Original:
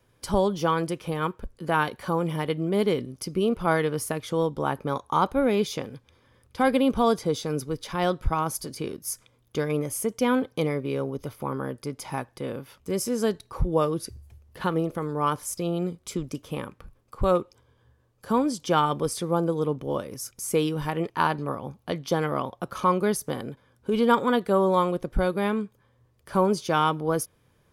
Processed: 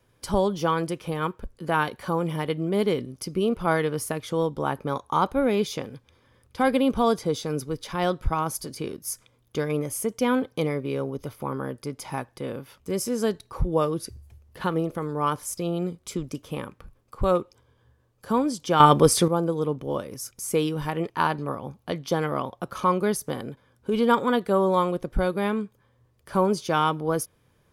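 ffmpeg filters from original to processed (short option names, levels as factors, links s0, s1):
-filter_complex "[0:a]asplit=3[s0][s1][s2];[s0]atrim=end=18.802[s3];[s1]atrim=start=18.798:end=19.282,asetpts=PTS-STARTPTS,volume=3.16[s4];[s2]atrim=start=19.278[s5];[s3][s4]acrossfade=d=0.004:c1=hsin:c2=hsin[s6];[s6][s5]acrossfade=d=0.004:c1=hsin:c2=hsin"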